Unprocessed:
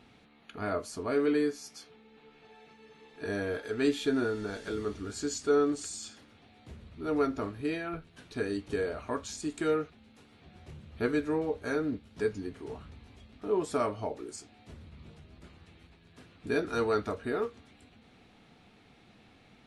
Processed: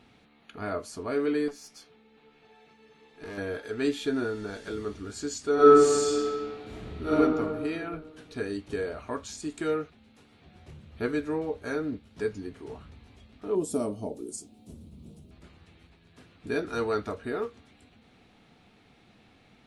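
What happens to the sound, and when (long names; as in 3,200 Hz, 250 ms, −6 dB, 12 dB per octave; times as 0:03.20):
0:01.48–0:03.38: tube saturation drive 36 dB, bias 0.45
0:05.54–0:07.14: thrown reverb, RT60 2 s, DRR −10 dB
0:13.55–0:15.31: drawn EQ curve 130 Hz 0 dB, 200 Hz +8 dB, 630 Hz −2 dB, 1,800 Hz −17 dB, 3,000 Hz −6 dB, 4,300 Hz −4 dB, 10,000 Hz +11 dB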